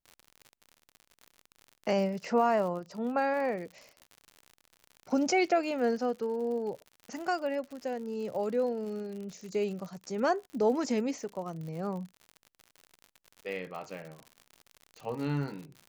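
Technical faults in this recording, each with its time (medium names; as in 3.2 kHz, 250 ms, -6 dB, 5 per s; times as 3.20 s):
crackle 75 per s -39 dBFS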